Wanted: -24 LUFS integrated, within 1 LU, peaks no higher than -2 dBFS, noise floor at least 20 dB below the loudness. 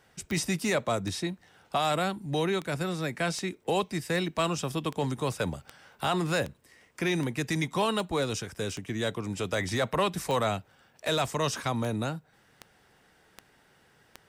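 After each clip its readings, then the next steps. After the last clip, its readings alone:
clicks found 19; loudness -30.0 LUFS; peak level -15.5 dBFS; loudness target -24.0 LUFS
-> de-click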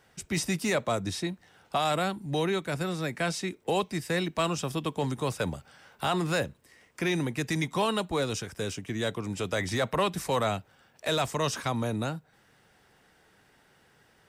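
clicks found 0; loudness -30.0 LUFS; peak level -15.5 dBFS; loudness target -24.0 LUFS
-> trim +6 dB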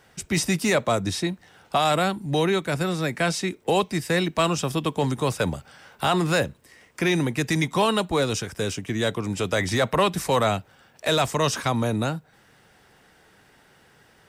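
loudness -24.0 LUFS; peak level -9.5 dBFS; noise floor -57 dBFS

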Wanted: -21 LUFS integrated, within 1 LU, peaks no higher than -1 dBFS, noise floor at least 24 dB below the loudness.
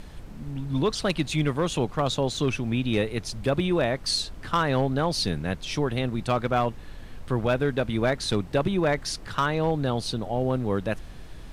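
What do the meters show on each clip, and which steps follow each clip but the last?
clipped samples 0.5%; clipping level -15.5 dBFS; noise floor -42 dBFS; noise floor target -51 dBFS; loudness -26.5 LUFS; peak level -15.5 dBFS; loudness target -21.0 LUFS
-> clip repair -15.5 dBFS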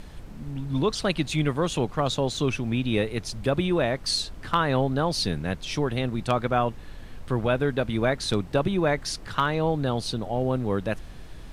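clipped samples 0.0%; noise floor -42 dBFS; noise floor target -50 dBFS
-> noise print and reduce 8 dB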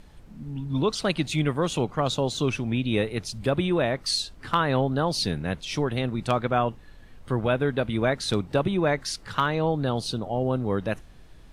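noise floor -48 dBFS; noise floor target -50 dBFS
-> noise print and reduce 6 dB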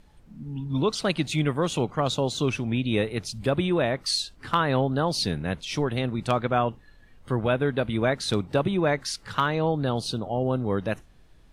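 noise floor -54 dBFS; loudness -26.0 LUFS; peak level -9.0 dBFS; loudness target -21.0 LUFS
-> trim +5 dB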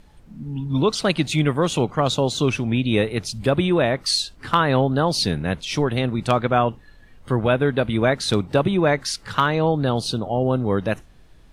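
loudness -21.0 LUFS; peak level -4.0 dBFS; noise floor -49 dBFS

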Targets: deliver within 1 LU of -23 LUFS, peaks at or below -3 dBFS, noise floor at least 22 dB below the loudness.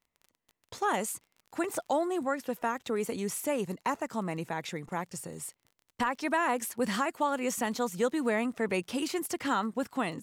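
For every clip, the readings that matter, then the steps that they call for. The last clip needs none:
tick rate 31 per s; loudness -32.0 LUFS; peak level -17.0 dBFS; loudness target -23.0 LUFS
-> de-click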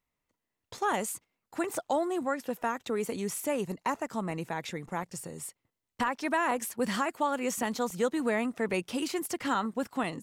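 tick rate 0.20 per s; loudness -32.0 LUFS; peak level -17.5 dBFS; loudness target -23.0 LUFS
-> trim +9 dB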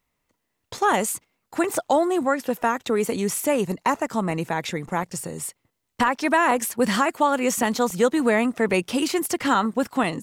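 loudness -23.0 LUFS; peak level -8.5 dBFS; noise floor -77 dBFS

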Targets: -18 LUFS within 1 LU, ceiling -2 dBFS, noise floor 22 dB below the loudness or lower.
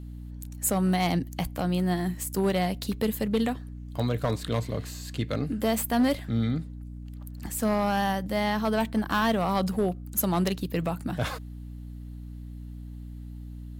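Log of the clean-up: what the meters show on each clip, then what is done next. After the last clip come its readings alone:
clipped samples 0.7%; clipping level -18.0 dBFS; hum 60 Hz; highest harmonic 300 Hz; hum level -37 dBFS; loudness -28.0 LUFS; peak level -18.0 dBFS; loudness target -18.0 LUFS
-> clip repair -18 dBFS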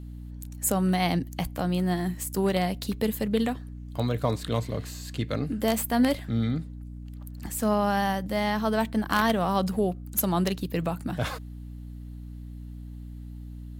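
clipped samples 0.0%; hum 60 Hz; highest harmonic 300 Hz; hum level -37 dBFS
-> hum notches 60/120/180/240/300 Hz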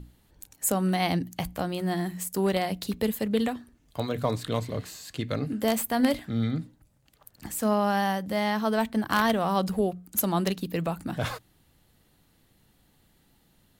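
hum not found; loudness -28.0 LUFS; peak level -8.5 dBFS; loudness target -18.0 LUFS
-> trim +10 dB; peak limiter -2 dBFS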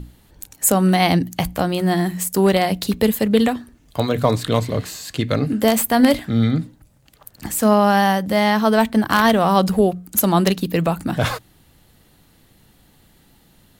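loudness -18.0 LUFS; peak level -2.0 dBFS; noise floor -55 dBFS

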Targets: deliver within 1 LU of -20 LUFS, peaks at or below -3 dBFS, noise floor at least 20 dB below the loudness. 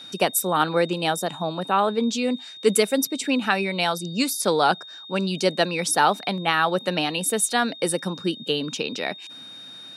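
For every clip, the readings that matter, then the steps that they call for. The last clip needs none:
steady tone 3.7 kHz; tone level -39 dBFS; loudness -23.0 LUFS; peak level -4.0 dBFS; loudness target -20.0 LUFS
-> band-stop 3.7 kHz, Q 30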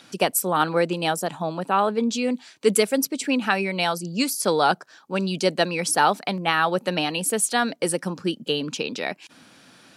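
steady tone not found; loudness -23.5 LUFS; peak level -4.5 dBFS; loudness target -20.0 LUFS
-> trim +3.5 dB; peak limiter -3 dBFS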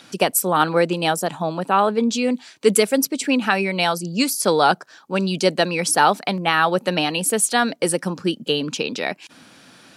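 loudness -20.0 LUFS; peak level -3.0 dBFS; noise floor -51 dBFS

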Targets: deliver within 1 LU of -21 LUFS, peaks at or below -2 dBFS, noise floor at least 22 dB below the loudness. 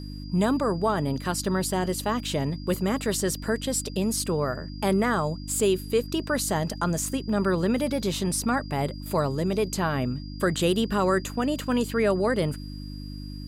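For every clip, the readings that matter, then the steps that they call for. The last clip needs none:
hum 50 Hz; highest harmonic 300 Hz; hum level -34 dBFS; steady tone 4.8 kHz; tone level -47 dBFS; loudness -26.0 LUFS; peak level -12.0 dBFS; loudness target -21.0 LUFS
-> de-hum 50 Hz, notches 6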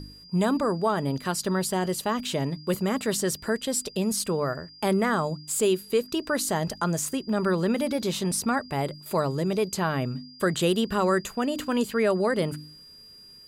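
hum not found; steady tone 4.8 kHz; tone level -47 dBFS
-> band-stop 4.8 kHz, Q 30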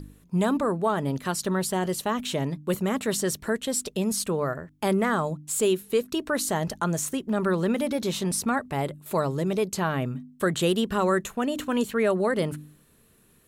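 steady tone not found; loudness -26.5 LUFS; peak level -12.0 dBFS; loudness target -21.0 LUFS
-> trim +5.5 dB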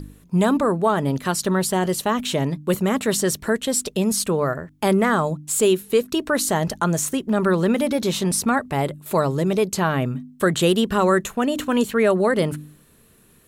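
loudness -21.0 LUFS; peak level -6.5 dBFS; noise floor -54 dBFS

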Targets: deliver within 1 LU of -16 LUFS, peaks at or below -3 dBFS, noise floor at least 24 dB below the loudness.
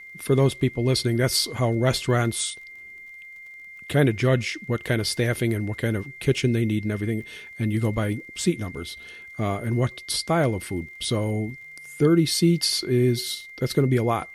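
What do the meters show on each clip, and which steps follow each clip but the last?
tick rate 31 per s; steady tone 2.1 kHz; tone level -40 dBFS; loudness -24.0 LUFS; peak level -6.5 dBFS; loudness target -16.0 LUFS
-> de-click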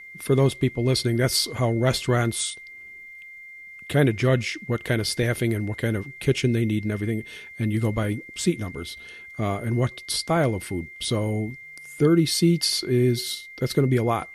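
tick rate 0 per s; steady tone 2.1 kHz; tone level -40 dBFS
-> band-stop 2.1 kHz, Q 30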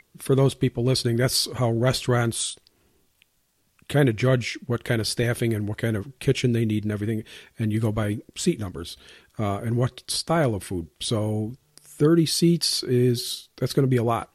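steady tone not found; loudness -24.0 LUFS; peak level -6.5 dBFS; loudness target -16.0 LUFS
-> trim +8 dB; peak limiter -3 dBFS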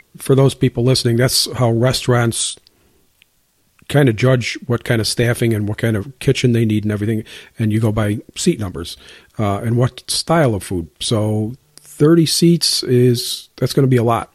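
loudness -16.5 LUFS; peak level -3.0 dBFS; noise floor -59 dBFS

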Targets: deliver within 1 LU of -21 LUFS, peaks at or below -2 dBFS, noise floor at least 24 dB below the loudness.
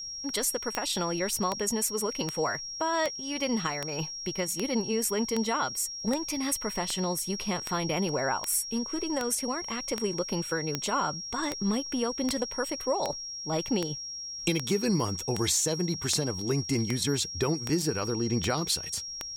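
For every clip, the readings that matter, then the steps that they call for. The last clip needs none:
clicks found 25; steady tone 5.6 kHz; tone level -36 dBFS; loudness -29.5 LUFS; peak level -11.0 dBFS; loudness target -21.0 LUFS
-> de-click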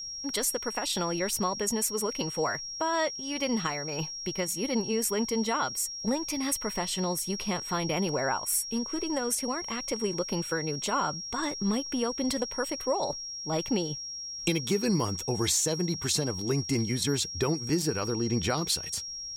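clicks found 0; steady tone 5.6 kHz; tone level -36 dBFS
-> band-stop 5.6 kHz, Q 30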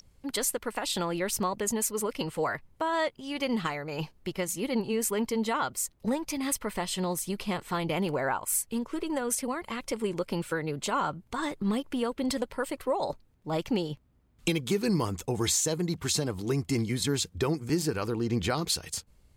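steady tone not found; loudness -30.5 LUFS; peak level -13.5 dBFS; loudness target -21.0 LUFS
-> trim +9.5 dB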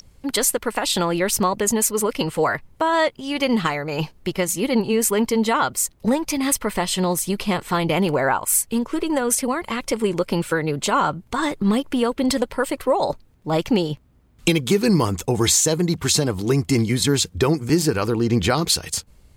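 loudness -21.0 LUFS; peak level -4.0 dBFS; noise floor -54 dBFS

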